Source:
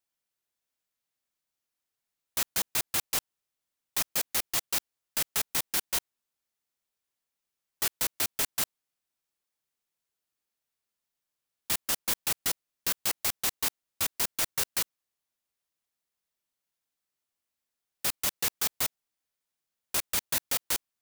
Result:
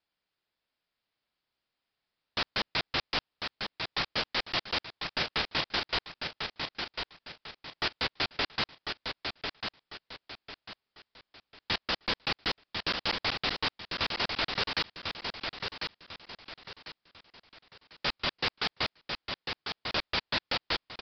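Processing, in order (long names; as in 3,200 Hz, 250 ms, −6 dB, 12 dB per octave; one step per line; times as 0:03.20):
repeating echo 1,047 ms, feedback 34%, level −6.5 dB
wave folding −21.5 dBFS
downsampling to 11,025 Hz
level +5.5 dB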